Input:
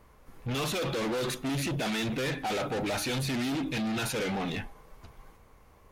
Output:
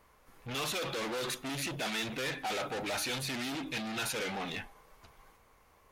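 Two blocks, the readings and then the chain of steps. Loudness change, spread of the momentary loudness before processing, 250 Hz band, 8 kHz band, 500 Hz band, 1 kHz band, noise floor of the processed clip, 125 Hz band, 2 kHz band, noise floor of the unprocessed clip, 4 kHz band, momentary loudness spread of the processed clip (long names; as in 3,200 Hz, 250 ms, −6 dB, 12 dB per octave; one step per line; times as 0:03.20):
−4.0 dB, 4 LU, −8.5 dB, −1.0 dB, −5.5 dB, −3.0 dB, −64 dBFS, −10.0 dB, −1.5 dB, −58 dBFS, −1.0 dB, 5 LU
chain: low-shelf EQ 450 Hz −10 dB
level −1 dB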